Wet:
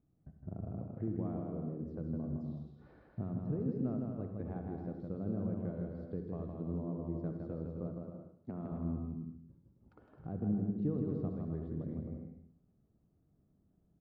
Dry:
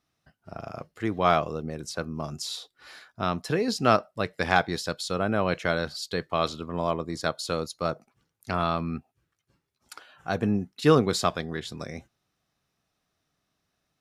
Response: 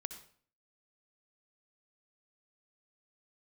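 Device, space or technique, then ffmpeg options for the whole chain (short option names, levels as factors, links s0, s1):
television next door: -filter_complex "[0:a]asettb=1/sr,asplit=3[s0][s1][s2];[s0]atrim=end=7.874[s3];[s1]atrim=start=7.87:end=8.72,asetpts=PTS-STARTPTS,afade=t=in:d=0.004:c=qsin,afade=t=out:st=0.846:d=0.004:c=qsin,highpass=190[s4];[s2]atrim=start=8.716[s5];[s3][s4]acrossfade=d=0.004:c1=hsin:c2=qsin[s6];[s6][s5]acrossfade=d=0.004:c1=qsin:c2=hsin,acompressor=threshold=0.00562:ratio=3,lowpass=290[s7];[1:a]atrim=start_sample=2205[s8];[s7][s8]afir=irnorm=-1:irlink=0,aecho=1:1:160|264|331.6|375.5|404.1:0.631|0.398|0.251|0.158|0.1,volume=3.55"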